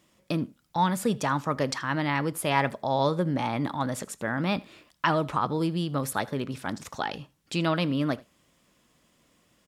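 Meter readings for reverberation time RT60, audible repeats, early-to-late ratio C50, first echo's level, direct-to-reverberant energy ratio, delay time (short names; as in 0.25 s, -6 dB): none, 1, none, -23.0 dB, none, 80 ms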